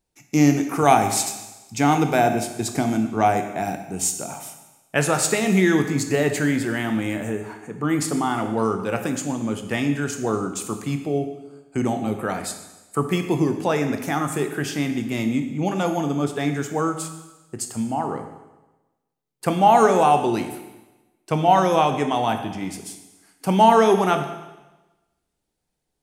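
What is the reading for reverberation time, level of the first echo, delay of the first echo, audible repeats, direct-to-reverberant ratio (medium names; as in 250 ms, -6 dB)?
1.1 s, no echo, no echo, no echo, 6.0 dB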